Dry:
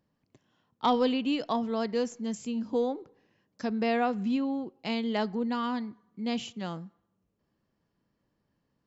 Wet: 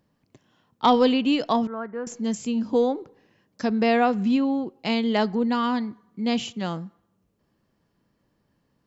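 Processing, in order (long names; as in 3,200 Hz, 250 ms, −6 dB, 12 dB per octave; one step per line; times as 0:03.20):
0:01.67–0:02.07: transistor ladder low-pass 1,600 Hz, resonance 65%
level +7 dB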